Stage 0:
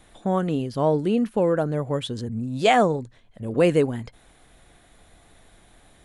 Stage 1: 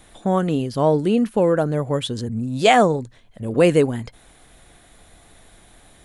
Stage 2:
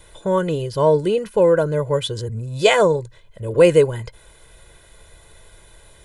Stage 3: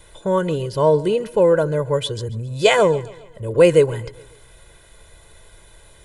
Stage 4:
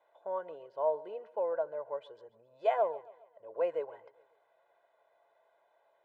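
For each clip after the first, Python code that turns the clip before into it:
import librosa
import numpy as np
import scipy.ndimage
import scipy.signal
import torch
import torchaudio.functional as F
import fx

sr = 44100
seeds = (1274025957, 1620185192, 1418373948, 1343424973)

y1 = fx.high_shelf(x, sr, hz=5200.0, db=4.5)
y1 = y1 * librosa.db_to_amplitude(3.5)
y2 = y1 + 0.88 * np.pad(y1, (int(2.0 * sr / 1000.0), 0))[:len(y1)]
y2 = y2 * librosa.db_to_amplitude(-1.0)
y3 = fx.echo_feedback(y2, sr, ms=137, feedback_pct=49, wet_db=-20.5)
y4 = fx.ladder_bandpass(y3, sr, hz=780.0, resonance_pct=65)
y4 = y4 * librosa.db_to_amplitude(-6.0)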